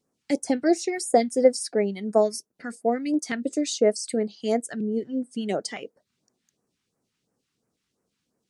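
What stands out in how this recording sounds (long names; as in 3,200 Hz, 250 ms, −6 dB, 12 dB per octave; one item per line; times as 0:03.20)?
phaser sweep stages 2, 2.9 Hz, lowest notch 500–3,300 Hz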